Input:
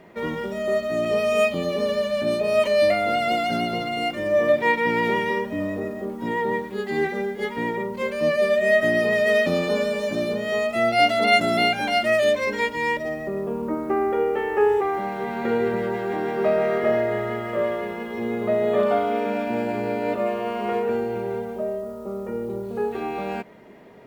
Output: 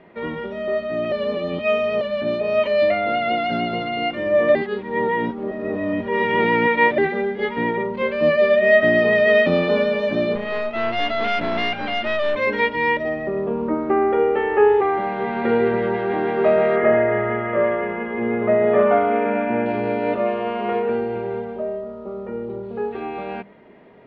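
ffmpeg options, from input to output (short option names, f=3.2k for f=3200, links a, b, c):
-filter_complex "[0:a]asettb=1/sr,asplit=3[a][b][c];[a]atrim=end=2.834[d];[b]atrim=start=2.83:end=3.42,asetpts=PTS-STARTPTS,afade=t=in:d=0.004:c=qsin,afade=t=out:st=0.586:d=0.004:c=qsin,equalizer=f=5.6k:t=o:w=0.38:g=-8[e];[c]atrim=start=3.416[f];[d][e]acrossfade=d=0.004:c1=hsin:c2=qsin[g];[g][f]acrossfade=d=0.004:c1=qsin:c2=hsin,asettb=1/sr,asplit=3[h][i][j];[h]atrim=end=10.354[k];[i]atrim=start=10.35:end=12.36,asetpts=PTS-STARTPTS,afade=t=in:d=0.004:c=qsin,afade=t=out:st=2.006:d=0.004:c=qsin,aeval=exprs='(tanh(14.1*val(0)+0.75)-tanh(0.75))/14.1':c=same[l];[j]atrim=start=12.356[m];[k][l]acrossfade=d=0.004:c1=hsin:c2=qsin[n];[n][m]acrossfade=d=0.004:c1=qsin:c2=hsin,asettb=1/sr,asplit=3[o][p][q];[o]atrim=end=16.764[r];[p]atrim=start=16.76:end=19.66,asetpts=PTS-STARTPTS,afade=t=in:d=0.004:c=qsin,afade=t=out:st=2.896:d=0.004:c=qsin,highshelf=f=3k:t=q:w=1.5:g=-12[s];[q]atrim=start=19.656[t];[r][s]acrossfade=d=0.004:c1=hsin:c2=qsin[u];[u][t]acrossfade=d=0.004:c1=qsin:c2=hsin,asplit=5[v][w][x][y][z];[v]atrim=end=1.122[aa];[w]atrim=start=1.118:end=2.012,asetpts=PTS-STARTPTS,areverse[ab];[x]atrim=start=2.008:end=4.552[ac];[y]atrim=start=4.548:end=6.982,asetpts=PTS-STARTPTS,areverse[ad];[z]atrim=start=6.978[ae];[aa][ab]acrossfade=d=0.004:c1=hsin:c2=hsin[af];[af][ac]acrossfade=d=0.004:c1=hsin:c2=hsin[ag];[ag][ad]acrossfade=d=0.004:c1=hsin:c2=hsin[ah];[ah][ae]acrossfade=d=0.004:c1=hsin:c2=hsin,lowpass=f=3.6k:w=0.5412,lowpass=f=3.6k:w=1.3066,bandreject=f=50:t=h:w=6,bandreject=f=100:t=h:w=6,bandreject=f=150:t=h:w=6,bandreject=f=200:t=h:w=6,dynaudnorm=f=640:g=13:m=5dB"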